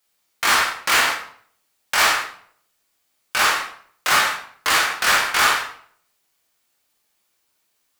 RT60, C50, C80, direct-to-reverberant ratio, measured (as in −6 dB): 0.55 s, 6.0 dB, 9.5 dB, −2.0 dB